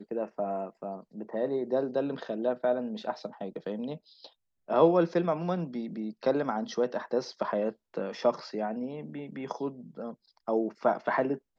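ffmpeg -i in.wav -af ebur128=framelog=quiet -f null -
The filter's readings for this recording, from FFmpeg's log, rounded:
Integrated loudness:
  I:         -31.1 LUFS
  Threshold: -41.5 LUFS
Loudness range:
  LRA:         4.6 LU
  Threshold: -51.3 LUFS
  LRA low:   -33.6 LUFS
  LRA high:  -29.0 LUFS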